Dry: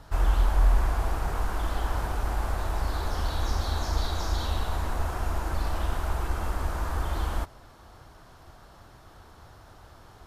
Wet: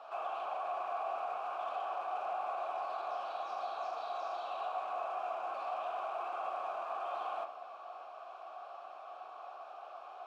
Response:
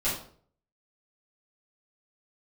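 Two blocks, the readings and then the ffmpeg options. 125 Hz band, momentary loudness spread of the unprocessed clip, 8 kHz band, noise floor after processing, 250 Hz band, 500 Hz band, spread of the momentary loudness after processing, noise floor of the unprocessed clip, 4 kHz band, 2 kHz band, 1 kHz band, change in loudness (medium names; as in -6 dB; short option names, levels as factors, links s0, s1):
under -40 dB, 6 LU, under -25 dB, -50 dBFS, under -20 dB, -2.0 dB, 11 LU, -52 dBFS, -14.5 dB, -10.5 dB, -1.0 dB, -10.0 dB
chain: -filter_complex "[0:a]highpass=360,alimiter=level_in=3.16:limit=0.0631:level=0:latency=1:release=29,volume=0.316,asplit=2[s0][s1];[s1]highpass=f=720:p=1,volume=3.55,asoftclip=type=tanh:threshold=0.0211[s2];[s0][s2]amix=inputs=2:normalize=0,lowpass=f=6500:p=1,volume=0.501,asplit=3[s3][s4][s5];[s3]bandpass=f=730:t=q:w=8,volume=1[s6];[s4]bandpass=f=1090:t=q:w=8,volume=0.501[s7];[s5]bandpass=f=2440:t=q:w=8,volume=0.355[s8];[s6][s7][s8]amix=inputs=3:normalize=0,asplit=2[s9][s10];[1:a]atrim=start_sample=2205,lowpass=4100[s11];[s10][s11]afir=irnorm=-1:irlink=0,volume=0.211[s12];[s9][s12]amix=inputs=2:normalize=0,volume=2.37"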